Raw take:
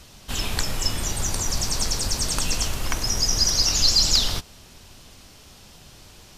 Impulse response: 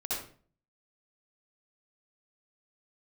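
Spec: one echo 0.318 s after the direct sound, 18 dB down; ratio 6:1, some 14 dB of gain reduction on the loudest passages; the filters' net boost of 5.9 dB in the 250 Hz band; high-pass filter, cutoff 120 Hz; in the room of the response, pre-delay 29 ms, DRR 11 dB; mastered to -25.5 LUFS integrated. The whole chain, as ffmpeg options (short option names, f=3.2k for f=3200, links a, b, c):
-filter_complex "[0:a]highpass=120,equalizer=f=250:t=o:g=8,acompressor=threshold=-31dB:ratio=6,aecho=1:1:318:0.126,asplit=2[a][b];[1:a]atrim=start_sample=2205,adelay=29[c];[b][c]afir=irnorm=-1:irlink=0,volume=-15.5dB[d];[a][d]amix=inputs=2:normalize=0,volume=6dB"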